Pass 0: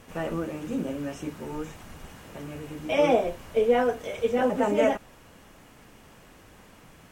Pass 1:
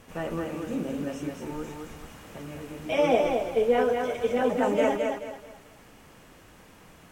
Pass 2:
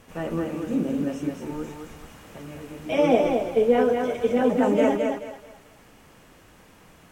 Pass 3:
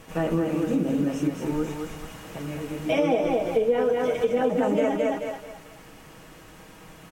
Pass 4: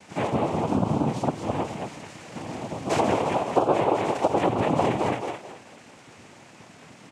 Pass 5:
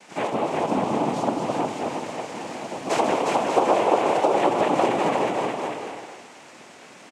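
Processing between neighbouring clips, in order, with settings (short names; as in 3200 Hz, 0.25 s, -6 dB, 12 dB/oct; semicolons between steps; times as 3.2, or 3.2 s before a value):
thinning echo 0.215 s, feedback 33%, high-pass 160 Hz, level -4 dB; gain -1.5 dB
dynamic EQ 240 Hz, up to +7 dB, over -38 dBFS, Q 0.75
comb 6.3 ms, depth 38%; compressor 4:1, threshold -25 dBFS, peak gain reduction 11 dB; gain +4.5 dB
noise vocoder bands 4
Bessel high-pass 310 Hz, order 2; bouncing-ball echo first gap 0.36 s, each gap 0.65×, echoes 5; gain +2 dB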